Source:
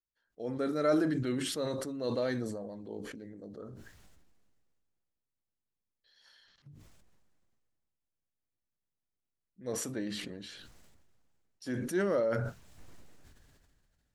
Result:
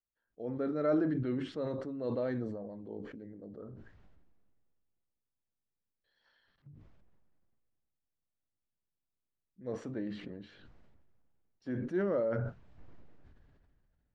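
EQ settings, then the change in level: tape spacing loss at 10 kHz 37 dB; 0.0 dB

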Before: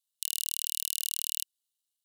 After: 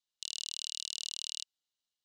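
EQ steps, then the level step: low-pass 6.4 kHz 24 dB/octave; 0.0 dB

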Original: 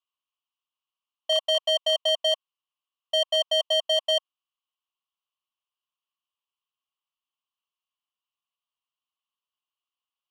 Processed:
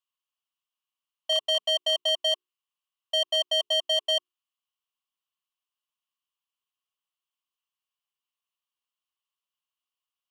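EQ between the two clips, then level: bass shelf 490 Hz -11.5 dB; hum notches 60/120/180/240/300/360/420 Hz; 0.0 dB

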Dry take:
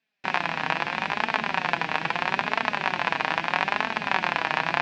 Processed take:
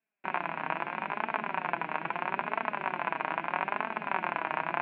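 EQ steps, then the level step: distance through air 120 m; cabinet simulation 250–2100 Hz, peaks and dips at 260 Hz -5 dB, 490 Hz -8 dB, 790 Hz -6 dB, 1.2 kHz -4 dB, 1.8 kHz -10 dB; 0.0 dB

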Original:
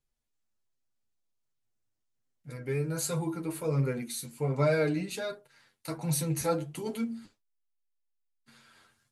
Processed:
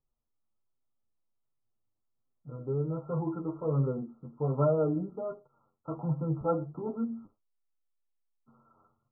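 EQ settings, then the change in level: brick-wall FIR low-pass 1.4 kHz; 0.0 dB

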